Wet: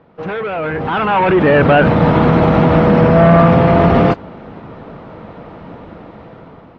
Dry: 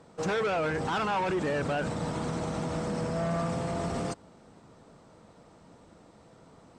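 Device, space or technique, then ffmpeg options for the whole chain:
action camera in a waterproof case: -af "lowpass=frequency=3000:width=0.5412,lowpass=frequency=3000:width=1.3066,dynaudnorm=framelen=520:gausssize=5:maxgain=16dB,volume=6dB" -ar 22050 -c:a aac -b:a 64k

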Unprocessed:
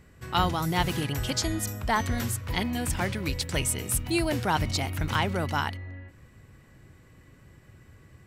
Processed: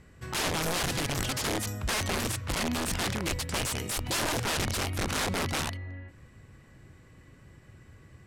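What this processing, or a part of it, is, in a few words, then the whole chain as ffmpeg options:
overflowing digital effects unit: -af "aeval=exprs='(mod(15*val(0)+1,2)-1)/15':channel_layout=same,lowpass=11000"

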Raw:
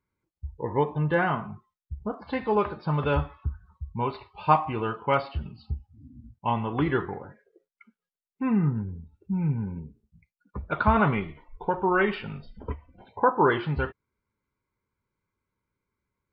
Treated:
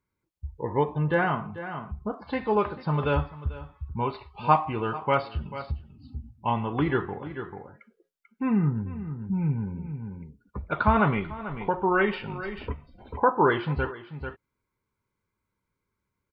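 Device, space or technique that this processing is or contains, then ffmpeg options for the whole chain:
ducked delay: -filter_complex "[0:a]asplit=3[link_01][link_02][link_03];[link_02]adelay=441,volume=-5dB[link_04];[link_03]apad=whole_len=739314[link_05];[link_04][link_05]sidechaincompress=threshold=-38dB:ratio=8:attack=16:release=459[link_06];[link_01][link_06]amix=inputs=2:normalize=0"

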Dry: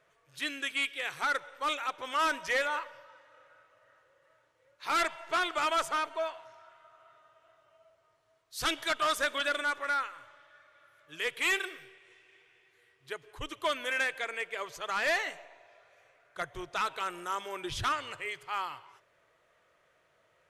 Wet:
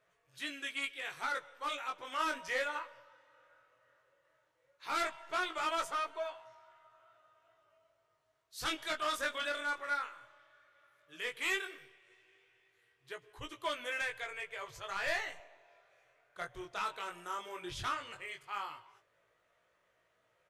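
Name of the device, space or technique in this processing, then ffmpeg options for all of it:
double-tracked vocal: -filter_complex "[0:a]asplit=2[link_01][link_02];[link_02]adelay=16,volume=-13.5dB[link_03];[link_01][link_03]amix=inputs=2:normalize=0,flanger=delay=17:depth=7.4:speed=0.15,asettb=1/sr,asplit=3[link_04][link_05][link_06];[link_04]atrim=end=14.014[link_07];[link_05]atrim=start=14.01:end=15.4,asetpts=PTS-STARTPTS,afade=type=in:duration=0.004:curve=qsin,afade=type=out:start_time=1.386:duration=0.004:curve=qsin,lowshelf=frequency=150:width_type=q:width=3:gain=12[link_08];[link_06]atrim=start=15.396[link_09];[link_07][link_08]acrossfade=duration=0.004:curve1=hsin:curve2=qsin[link_10];[link_10][link_09]acrossfade=duration=0.004:curve1=qsin:curve2=hsin,volume=-3dB"

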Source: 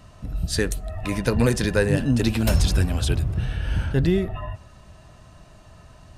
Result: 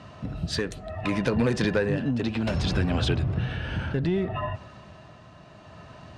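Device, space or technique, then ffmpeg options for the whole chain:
AM radio: -filter_complex "[0:a]highpass=120,lowpass=4000,acompressor=threshold=-24dB:ratio=6,asoftclip=type=tanh:threshold=-19dB,tremolo=f=0.66:d=0.37,asettb=1/sr,asplit=3[link_01][link_02][link_03];[link_01]atrim=end=1.704[link_04];[link_02]atrim=start=1.7:end=3.5,asetpts=PTS-STARTPTS,afade=type=in:duration=0.004:curve=qsin,afade=type=out:start_time=1.796:duration=0.004:curve=qsin,highshelf=frequency=8300:gain=-8[link_05];[link_03]atrim=start=3.496[link_06];[link_04][link_05]acrossfade=duration=0.004:curve1=hsin:curve2=qsin[link_07];[link_07][link_06]acrossfade=duration=0.004:curve1=qsin:curve2=hsin,volume=6dB"

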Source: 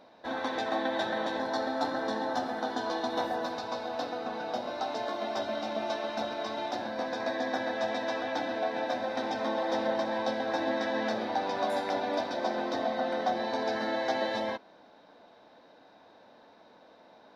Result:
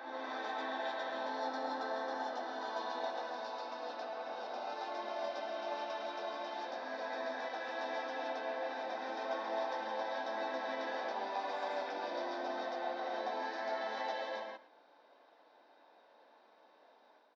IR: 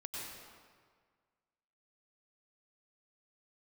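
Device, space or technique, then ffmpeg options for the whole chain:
ghost voice: -filter_complex "[0:a]lowpass=frequency=6100:width=0.5412,lowpass=frequency=6100:width=1.3066,lowshelf=frequency=270:gain=-5.5,equalizer=frequency=3900:width_type=o:width=0.21:gain=-4,aecho=1:1:110:0.141,areverse[link_01];[1:a]atrim=start_sample=2205[link_02];[link_01][link_02]afir=irnorm=-1:irlink=0,areverse,highpass=340,volume=-5.5dB"

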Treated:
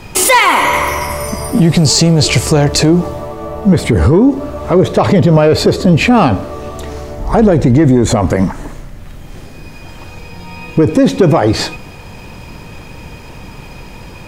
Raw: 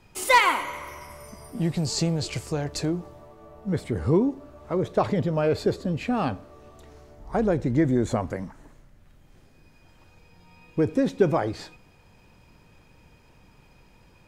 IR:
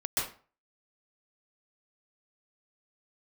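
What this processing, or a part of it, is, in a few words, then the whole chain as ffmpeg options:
mastering chain: -af "equalizer=frequency=1500:width_type=o:width=0.24:gain=-2.5,acompressor=threshold=-27dB:ratio=2,asoftclip=type=tanh:threshold=-18dB,alimiter=level_in=25dB:limit=-1dB:release=50:level=0:latency=1,volume=-1dB"

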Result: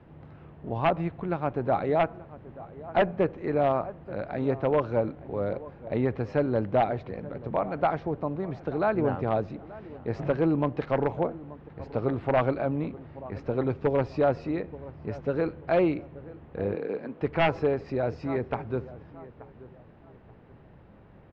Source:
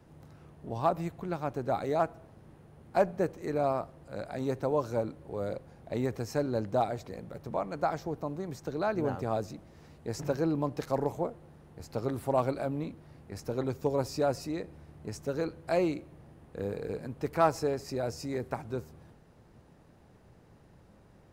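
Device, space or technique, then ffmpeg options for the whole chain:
synthesiser wavefolder: -filter_complex "[0:a]asettb=1/sr,asplit=3[link_01][link_02][link_03];[link_01]atrim=end=16.754[link_04];[link_02]atrim=start=16.75:end=17.22,asetpts=PTS-STARTPTS,afade=type=in:duration=0.004:curve=qsin,afade=type=out:start_time=0.466:duration=0.004:curve=qsin,highpass=frequency=210:width=0.5412,highpass=frequency=210:width=1.3066[link_05];[link_03]atrim=start=17.216[link_06];[link_04][link_05]acrossfade=duration=0.004:curve1=hsin:curve2=qsin[link_07];[link_07][link_06]acrossfade=duration=0.004:curve1=qsin:curve2=hsin,asplit=2[link_08][link_09];[link_09]adelay=881,lowpass=frequency=1600:poles=1,volume=-18dB,asplit=2[link_10][link_11];[link_11]adelay=881,lowpass=frequency=1600:poles=1,volume=0.33,asplit=2[link_12][link_13];[link_13]adelay=881,lowpass=frequency=1600:poles=1,volume=0.33[link_14];[link_08][link_10][link_12][link_14]amix=inputs=4:normalize=0,aeval=exprs='0.1*(abs(mod(val(0)/0.1+3,4)-2)-1)':channel_layout=same,lowpass=frequency=3100:width=0.5412,lowpass=frequency=3100:width=1.3066,volume=5dB"

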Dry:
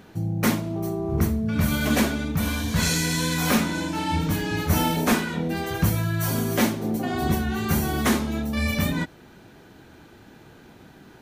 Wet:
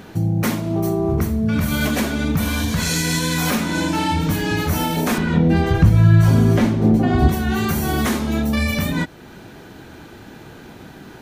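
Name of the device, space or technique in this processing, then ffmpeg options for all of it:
stacked limiters: -filter_complex "[0:a]alimiter=limit=-13dB:level=0:latency=1:release=225,alimiter=limit=-19.5dB:level=0:latency=1:release=329,asettb=1/sr,asplit=3[link_01][link_02][link_03];[link_01]atrim=end=5.184[link_04];[link_02]atrim=start=5.18:end=7.29,asetpts=PTS-STARTPTS,afade=type=in:duration=0.004:curve=qsin,afade=type=out:start_time=2.106:duration=0.004:curve=qsin,aemphasis=mode=reproduction:type=bsi[link_05];[link_03]atrim=start=7.286[link_06];[link_04][link_05]acrossfade=duration=0.004:curve1=hsin:curve2=qsin[link_07];[link_07][link_06]acrossfade=duration=0.004:curve1=qsin:curve2=hsin,volume=9dB"

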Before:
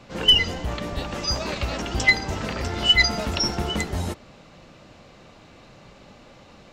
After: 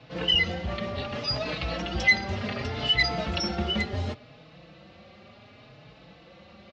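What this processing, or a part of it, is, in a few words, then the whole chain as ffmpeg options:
barber-pole flanger into a guitar amplifier: -filter_complex "[0:a]asplit=2[link_01][link_02];[link_02]adelay=4.2,afreqshift=0.68[link_03];[link_01][link_03]amix=inputs=2:normalize=1,asoftclip=type=tanh:threshold=-14.5dB,highpass=79,equalizer=frequency=280:width_type=q:width=4:gain=-5,equalizer=frequency=400:width_type=q:width=4:gain=-3,equalizer=frequency=960:width_type=q:width=4:gain=-7,equalizer=frequency=1500:width_type=q:width=4:gain=-3,lowpass=frequency=4600:width=0.5412,lowpass=frequency=4600:width=1.3066,volume=2.5dB"

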